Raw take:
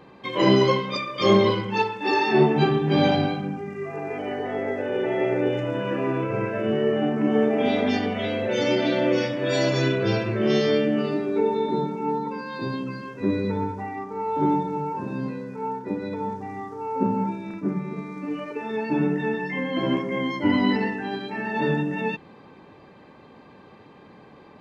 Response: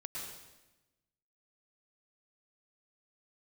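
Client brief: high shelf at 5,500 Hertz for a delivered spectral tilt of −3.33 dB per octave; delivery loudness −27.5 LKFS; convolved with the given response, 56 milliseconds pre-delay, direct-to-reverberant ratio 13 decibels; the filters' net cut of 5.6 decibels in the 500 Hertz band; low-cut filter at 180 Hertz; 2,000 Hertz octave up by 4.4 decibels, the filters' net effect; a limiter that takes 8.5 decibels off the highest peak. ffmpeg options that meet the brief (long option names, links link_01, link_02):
-filter_complex "[0:a]highpass=180,equalizer=frequency=500:width_type=o:gain=-7.5,equalizer=frequency=2000:width_type=o:gain=6.5,highshelf=frequency=5500:gain=-7,alimiter=limit=-16.5dB:level=0:latency=1,asplit=2[link_01][link_02];[1:a]atrim=start_sample=2205,adelay=56[link_03];[link_02][link_03]afir=irnorm=-1:irlink=0,volume=-12.5dB[link_04];[link_01][link_04]amix=inputs=2:normalize=0"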